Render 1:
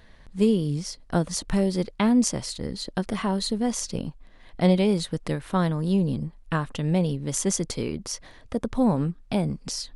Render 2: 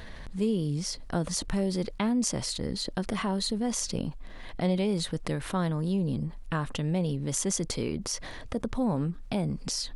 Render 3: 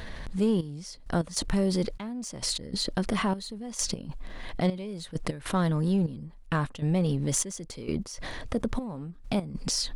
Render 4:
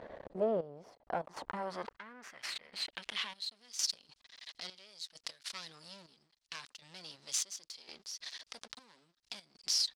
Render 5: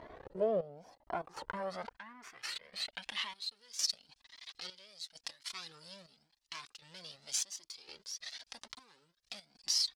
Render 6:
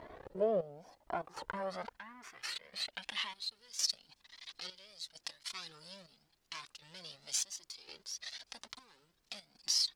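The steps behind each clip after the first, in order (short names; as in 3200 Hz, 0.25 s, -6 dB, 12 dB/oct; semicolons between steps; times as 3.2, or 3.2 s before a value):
fast leveller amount 50%; gain -8 dB
in parallel at -5.5 dB: overloaded stage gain 27 dB; on the sum: step gate "xxxx...x." 99 bpm -12 dB
half-wave rectifier; band-pass sweep 560 Hz -> 4800 Hz, 0.7–3.68; gain +6.5 dB
cascading flanger rising 0.92 Hz; gain +4 dB
added noise pink -80 dBFS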